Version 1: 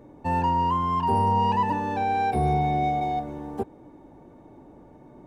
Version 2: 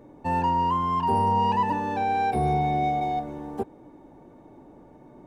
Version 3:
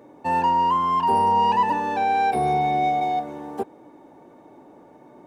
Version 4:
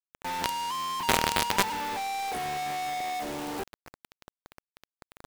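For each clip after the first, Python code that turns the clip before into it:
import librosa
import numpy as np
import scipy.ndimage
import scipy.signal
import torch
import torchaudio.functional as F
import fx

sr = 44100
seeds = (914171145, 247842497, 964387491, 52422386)

y1 = fx.peak_eq(x, sr, hz=69.0, db=-4.0, octaves=1.7)
y2 = fx.highpass(y1, sr, hz=410.0, slope=6)
y2 = y2 * 10.0 ** (5.0 / 20.0)
y3 = fx.high_shelf(y2, sr, hz=4300.0, db=6.0)
y3 = fx.quant_companded(y3, sr, bits=2)
y3 = y3 * 10.0 ** (-7.0 / 20.0)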